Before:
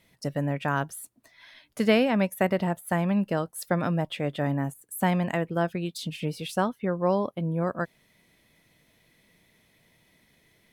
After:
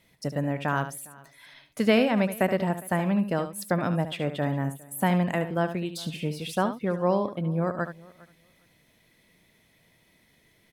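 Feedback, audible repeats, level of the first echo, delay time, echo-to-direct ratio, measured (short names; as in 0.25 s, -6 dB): no steady repeat, 3, -10.5 dB, 73 ms, -10.0 dB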